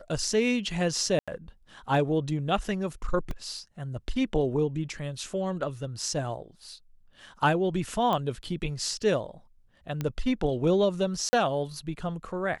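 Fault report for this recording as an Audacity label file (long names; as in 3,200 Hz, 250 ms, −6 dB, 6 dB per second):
1.190000	1.280000	drop-out 86 ms
3.310000	3.310000	drop-out 2.3 ms
8.130000	8.130000	click −16 dBFS
10.010000	10.010000	click −17 dBFS
11.290000	11.330000	drop-out 40 ms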